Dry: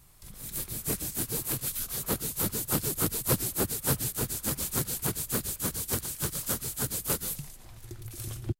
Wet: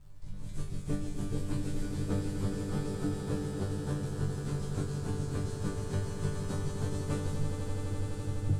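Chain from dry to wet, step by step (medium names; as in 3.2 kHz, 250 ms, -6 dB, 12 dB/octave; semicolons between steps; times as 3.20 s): low-pass 9 kHz 24 dB/octave; tilt EQ -3.5 dB/octave; gain riding within 4 dB; crackle 120 per s -46 dBFS; chord resonator G2 fifth, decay 0.37 s; on a send: echo with a slow build-up 84 ms, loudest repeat 8, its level -10.5 dB; on the sum: trim +4 dB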